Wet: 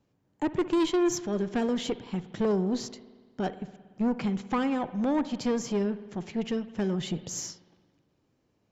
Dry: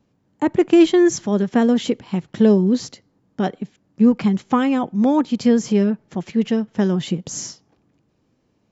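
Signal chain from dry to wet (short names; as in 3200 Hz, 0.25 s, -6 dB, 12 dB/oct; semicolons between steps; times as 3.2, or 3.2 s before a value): bell 220 Hz -5 dB 0.51 oct; tube stage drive 15 dB, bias 0.25; spring tank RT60 1.5 s, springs 57 ms, chirp 30 ms, DRR 14 dB; gain -5.5 dB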